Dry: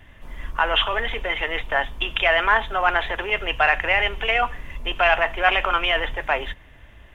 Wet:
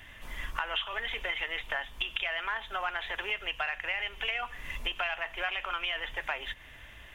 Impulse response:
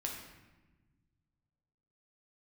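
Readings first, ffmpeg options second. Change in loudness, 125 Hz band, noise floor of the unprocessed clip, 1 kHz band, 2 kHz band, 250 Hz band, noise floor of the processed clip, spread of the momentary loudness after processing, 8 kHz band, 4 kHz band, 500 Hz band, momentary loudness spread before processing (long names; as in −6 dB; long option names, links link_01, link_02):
−12.0 dB, below −10 dB, −48 dBFS, −15.0 dB, −11.5 dB, −16.0 dB, −50 dBFS, 7 LU, can't be measured, −9.0 dB, −17.0 dB, 8 LU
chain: -af "tiltshelf=frequency=1200:gain=-6.5,acompressor=threshold=-31dB:ratio=6"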